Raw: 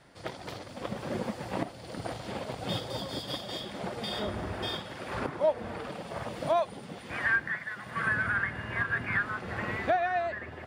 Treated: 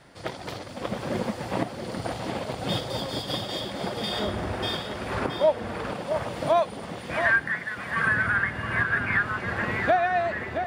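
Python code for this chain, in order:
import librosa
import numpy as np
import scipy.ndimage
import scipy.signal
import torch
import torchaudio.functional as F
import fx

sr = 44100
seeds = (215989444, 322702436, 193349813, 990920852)

y = x + 10.0 ** (-8.0 / 20.0) * np.pad(x, (int(671 * sr / 1000.0), 0))[:len(x)]
y = F.gain(torch.from_numpy(y), 5.0).numpy()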